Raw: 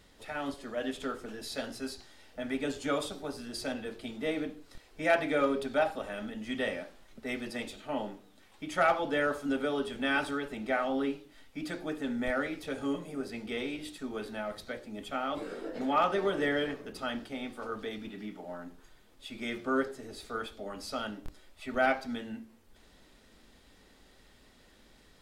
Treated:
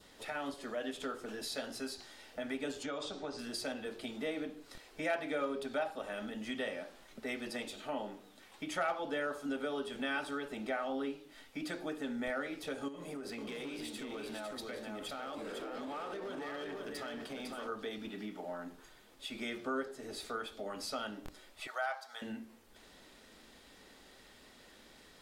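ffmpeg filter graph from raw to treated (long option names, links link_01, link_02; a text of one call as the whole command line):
ffmpeg -i in.wav -filter_complex "[0:a]asettb=1/sr,asplit=3[link_01][link_02][link_03];[link_01]atrim=end=2.834[link_04];[link_02]atrim=start=2.83:end=3.39,asetpts=PTS-STARTPTS,afade=type=in:duration=0.004:curve=qsin,afade=type=out:start_time=0.556:duration=0.004:curve=qsin,lowpass=frequency=6900:width=0.5412,lowpass=frequency=6900:width=1.3066,acompressor=threshold=-35dB:ratio=2.5:attack=3.2:release=140:knee=1:detection=peak[link_05];[link_03]atrim=start=3.386[link_06];[link_04][link_05]acrossfade=duration=0.004:curve1=hsin:curve2=qsin[link_07];[link_07][link_06]acrossfade=duration=0.004:curve1=qsin:curve2=hsin,asettb=1/sr,asplit=3[link_08][link_09][link_10];[link_08]atrim=end=12.884[link_11];[link_09]atrim=start=12.88:end=17.68,asetpts=PTS-STARTPTS,afade=type=in:duration=0.004:curve=qsin,afade=type=out:start_time=4.796:duration=0.004:curve=qsin,acompressor=threshold=-38dB:ratio=12:attack=3.2:release=140:knee=1:detection=peak,aecho=1:1:503:0.596,atrim=end_sample=211680,asoftclip=type=hard:threshold=-37dB[link_12];[link_10]atrim=start=17.676[link_13];[link_11][link_12]acrossfade=duration=0.004:curve1=hsin:curve2=qsin[link_14];[link_14][link_13]acrossfade=duration=0.004:curve1=qsin:curve2=hsin,asettb=1/sr,asplit=3[link_15][link_16][link_17];[link_15]atrim=end=21.674[link_18];[link_16]atrim=start=21.67:end=22.22,asetpts=PTS-STARTPTS,afade=type=in:duration=0.004:curve=qsin,afade=type=out:start_time=0.546:duration=0.004:curve=qsin,highpass=frequency=720:width=0.5412,highpass=frequency=720:width=1.3066,equalizer=frequency=2500:width=2.3:gain=-10[link_19];[link_17]atrim=start=22.216[link_20];[link_18][link_19]acrossfade=duration=0.004:curve1=hsin:curve2=qsin[link_21];[link_21][link_20]acrossfade=duration=0.004:curve1=qsin:curve2=hsin,lowshelf=frequency=150:gain=-11,acompressor=threshold=-44dB:ratio=2,adynamicequalizer=threshold=0.00126:dfrequency=2100:dqfactor=2.6:tfrequency=2100:tqfactor=2.6:attack=5:release=100:ratio=0.375:range=2:mode=cutabove:tftype=bell,volume=3.5dB" out.wav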